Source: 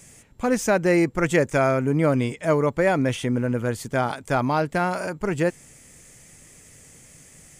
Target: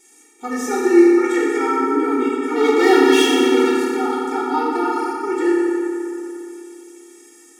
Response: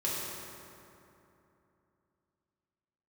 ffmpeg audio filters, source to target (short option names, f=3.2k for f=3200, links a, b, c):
-filter_complex "[0:a]asplit=3[a][b][c];[a]afade=t=out:st=2.55:d=0.02[d];[b]asplit=2[e][f];[f]highpass=f=720:p=1,volume=28dB,asoftclip=type=tanh:threshold=-9dB[g];[e][g]amix=inputs=2:normalize=0,lowpass=f=4.9k:p=1,volume=-6dB,afade=t=in:st=2.55:d=0.02,afade=t=out:st=3.69:d=0.02[h];[c]afade=t=in:st=3.69:d=0.02[i];[d][h][i]amix=inputs=3:normalize=0[j];[1:a]atrim=start_sample=2205[k];[j][k]afir=irnorm=-1:irlink=0,afftfilt=real='re*eq(mod(floor(b*sr/1024/240),2),1)':imag='im*eq(mod(floor(b*sr/1024/240),2),1)':win_size=1024:overlap=0.75,volume=-1dB"